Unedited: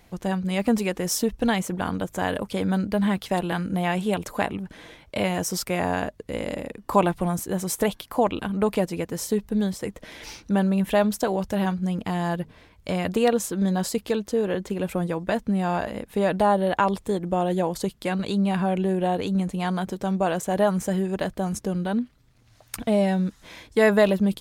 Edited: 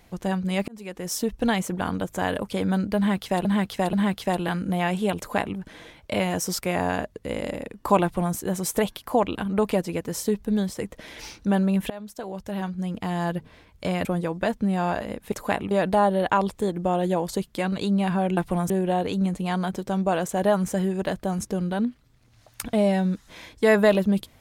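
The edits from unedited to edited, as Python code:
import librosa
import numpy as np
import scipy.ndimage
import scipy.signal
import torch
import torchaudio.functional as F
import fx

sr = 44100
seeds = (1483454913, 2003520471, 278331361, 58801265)

y = fx.edit(x, sr, fx.fade_in_span(start_s=0.68, length_s=1.0, curve='qsin'),
    fx.repeat(start_s=2.97, length_s=0.48, count=3),
    fx.duplicate(start_s=4.22, length_s=0.39, to_s=16.18),
    fx.duplicate(start_s=7.07, length_s=0.33, to_s=18.84),
    fx.fade_in_from(start_s=10.94, length_s=1.42, floor_db=-21.5),
    fx.cut(start_s=13.09, length_s=1.82), tone=tone)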